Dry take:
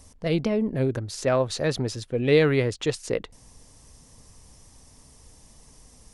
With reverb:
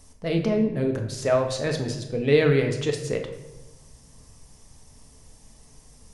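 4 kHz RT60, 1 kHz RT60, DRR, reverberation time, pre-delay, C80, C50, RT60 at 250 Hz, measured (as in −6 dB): 0.70 s, 0.90 s, 3.0 dB, 1.1 s, 5 ms, 10.5 dB, 7.5 dB, 1.3 s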